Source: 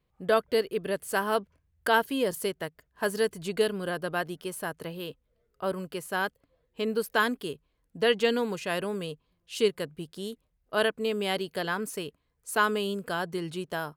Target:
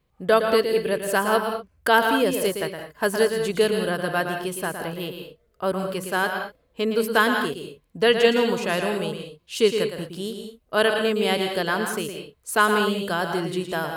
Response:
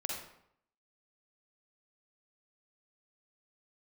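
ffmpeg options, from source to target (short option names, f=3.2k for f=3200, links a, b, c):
-filter_complex "[0:a]asplit=2[a][b];[1:a]atrim=start_sample=2205,afade=t=out:st=0.18:d=0.01,atrim=end_sample=8379,adelay=114[c];[b][c]afir=irnorm=-1:irlink=0,volume=-6dB[d];[a][d]amix=inputs=2:normalize=0,volume=5.5dB"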